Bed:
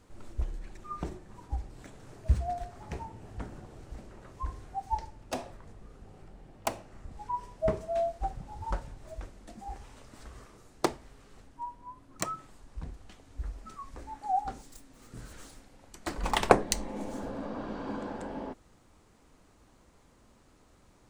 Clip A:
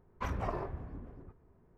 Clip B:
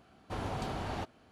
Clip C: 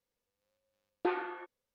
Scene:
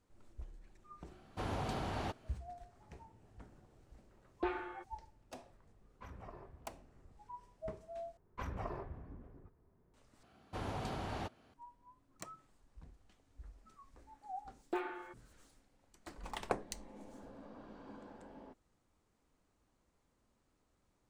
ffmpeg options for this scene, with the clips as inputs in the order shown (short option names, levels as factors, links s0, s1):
-filter_complex "[2:a]asplit=2[s0][s1];[3:a]asplit=2[s2][s3];[1:a]asplit=2[s4][s5];[0:a]volume=0.158,asplit=3[s6][s7][s8];[s6]atrim=end=8.174[s9];[s5]atrim=end=1.77,asetpts=PTS-STARTPTS,volume=0.473[s10];[s7]atrim=start=9.936:end=10.234[s11];[s1]atrim=end=1.31,asetpts=PTS-STARTPTS,volume=0.631[s12];[s8]atrim=start=11.536[s13];[s0]atrim=end=1.31,asetpts=PTS-STARTPTS,volume=0.794,afade=t=in:d=0.004:c=hsin,afade=t=out:st=1.306:d=0.004:c=hsin,adelay=1070[s14];[s2]atrim=end=1.74,asetpts=PTS-STARTPTS,volume=0.562,afade=t=in:d=0.004:c=hsin,afade=t=out:st=1.736:d=0.004:c=hsin,adelay=3380[s15];[s4]atrim=end=1.77,asetpts=PTS-STARTPTS,volume=0.158,afade=t=in:d=0.004:c=hsin,afade=t=out:st=1.766:d=0.004:c=hsin,adelay=5800[s16];[s3]atrim=end=1.74,asetpts=PTS-STARTPTS,volume=0.501,afade=t=in:d=0.004:c=hsin,afade=t=out:st=1.736:d=0.004:c=hsin,adelay=13680[s17];[s9][s10]acrossfade=d=0.004:c1=hsin:c2=hsin[s18];[s18][s11]acrossfade=d=0.004:c1=hsin:c2=hsin[s19];[s19][s12]acrossfade=d=0.004:c1=hsin:c2=hsin[s20];[s20][s13]acrossfade=d=0.004:c1=hsin:c2=hsin[s21];[s21][s14][s15][s16][s17]amix=inputs=5:normalize=0"